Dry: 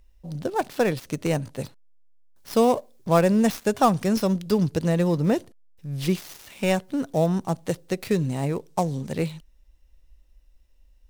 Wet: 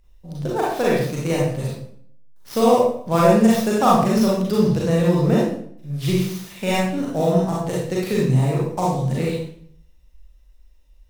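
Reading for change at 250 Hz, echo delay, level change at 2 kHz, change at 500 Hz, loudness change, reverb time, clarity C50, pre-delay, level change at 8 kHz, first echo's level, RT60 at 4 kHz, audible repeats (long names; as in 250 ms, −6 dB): +4.5 dB, no echo audible, +4.0 dB, +5.0 dB, +4.5 dB, 0.60 s, −1.0 dB, 33 ms, +4.0 dB, no echo audible, 0.50 s, no echo audible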